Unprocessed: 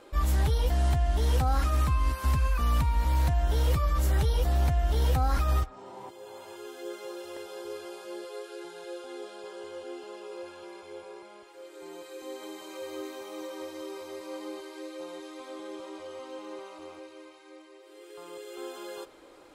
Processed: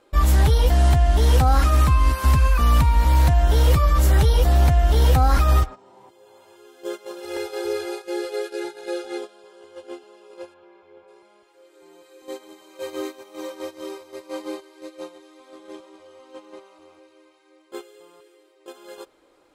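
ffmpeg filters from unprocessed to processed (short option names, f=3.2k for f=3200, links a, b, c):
-filter_complex "[0:a]asplit=3[a][b][c];[a]afade=t=out:st=7.21:d=0.02[d];[b]aecho=1:1:2.4:0.84,afade=t=in:st=7.21:d=0.02,afade=t=out:st=9.17:d=0.02[e];[c]afade=t=in:st=9.17:d=0.02[f];[d][e][f]amix=inputs=3:normalize=0,asplit=3[g][h][i];[g]afade=t=out:st=10.53:d=0.02[j];[h]lowpass=2.5k,afade=t=in:st=10.53:d=0.02,afade=t=out:st=11.07:d=0.02[k];[i]afade=t=in:st=11.07:d=0.02[l];[j][k][l]amix=inputs=3:normalize=0,asplit=3[m][n][o];[m]atrim=end=17.722[p];[n]atrim=start=17.718:end=18.662,asetpts=PTS-STARTPTS,areverse[q];[o]atrim=start=18.658[r];[p][q]acrossfade=d=0.004:c1=hsin:c2=hsin[s];[s][r]acrossfade=d=0.004:c1=hsin:c2=hsin,agate=range=-15dB:threshold=-38dB:ratio=16:detection=peak,volume=9dB"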